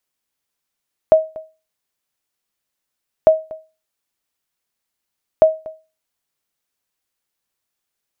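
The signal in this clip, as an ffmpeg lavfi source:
-f lavfi -i "aevalsrc='0.794*(sin(2*PI*634*mod(t,2.15))*exp(-6.91*mod(t,2.15)/0.3)+0.0841*sin(2*PI*634*max(mod(t,2.15)-0.24,0))*exp(-6.91*max(mod(t,2.15)-0.24,0)/0.3))':d=6.45:s=44100"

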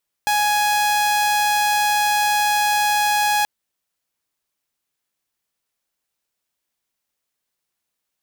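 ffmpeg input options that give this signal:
-f lavfi -i "aevalsrc='0.211*(2*mod(834*t,1)-1)':d=3.18:s=44100"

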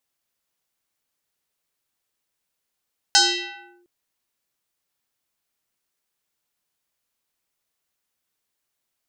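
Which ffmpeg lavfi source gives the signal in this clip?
-f lavfi -i "aevalsrc='0.335*pow(10,-3*t/0.86)*sin(2*PI*352*t+5.6*clip(1-t/0.69,0,1)*sin(2*PI*3.3*352*t))':d=0.71:s=44100"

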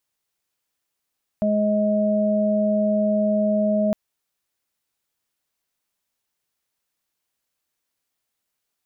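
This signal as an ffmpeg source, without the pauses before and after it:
-f lavfi -i "aevalsrc='0.1*sin(2*PI*210*t)+0.01*sin(2*PI*420*t)+0.1*sin(2*PI*630*t)':d=2.51:s=44100"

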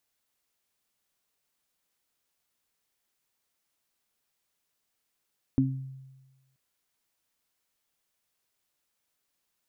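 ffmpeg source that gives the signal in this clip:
-f lavfi -i "aevalsrc='0.0668*pow(10,-3*t/1.22)*sin(2*PI*133*t)+0.133*pow(10,-3*t/0.36)*sin(2*PI*266*t)':d=0.98:s=44100"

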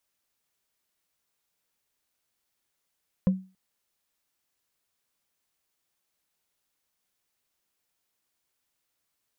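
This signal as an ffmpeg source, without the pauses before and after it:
-f lavfi -i "aevalsrc='0.178*pow(10,-3*t/0.32)*sin(2*PI*188*t)+0.0501*pow(10,-3*t/0.095)*sin(2*PI*518.3*t)+0.0141*pow(10,-3*t/0.042)*sin(2*PI*1016*t)+0.00398*pow(10,-3*t/0.023)*sin(2*PI*1679.4*t)+0.00112*pow(10,-3*t/0.014)*sin(2*PI*2507.9*t)':d=0.28:s=44100"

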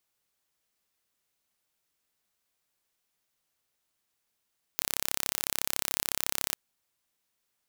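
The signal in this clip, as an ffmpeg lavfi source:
-f lavfi -i "aevalsrc='0.841*eq(mod(n,1301),0)':d=1.76:s=44100"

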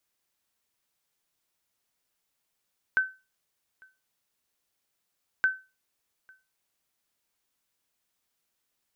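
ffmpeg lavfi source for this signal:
-f lavfi -i "aevalsrc='0.158*(sin(2*PI*1530*mod(t,2.47))*exp(-6.91*mod(t,2.47)/0.28)+0.0316*sin(2*PI*1530*max(mod(t,2.47)-0.85,0))*exp(-6.91*max(mod(t,2.47)-0.85,0)/0.28))':d=4.94:s=44100"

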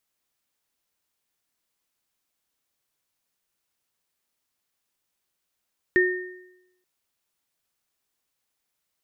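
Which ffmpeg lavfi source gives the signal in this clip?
-f lavfi -i "aevalsrc='0.15*pow(10,-3*t/0.9)*sin(2*PI*365*t)+0.15*pow(10,-3*t/0.78)*sin(2*PI*1830*t)':d=0.88:s=44100"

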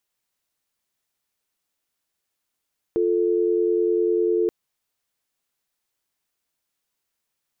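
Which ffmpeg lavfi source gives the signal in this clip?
-f lavfi -i "aevalsrc='0.0944*(sin(2*PI*350*t)+sin(2*PI*440*t))':d=1.53:s=44100"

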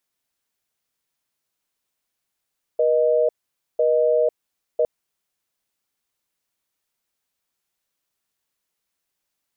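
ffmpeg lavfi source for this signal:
-f lavfi -i "aevalsrc='0.126*(sin(2*PI*480*t)+sin(2*PI*620*t))*clip(min(mod(t,1),0.5-mod(t,1))/0.005,0,1)':d=2.06:s=44100"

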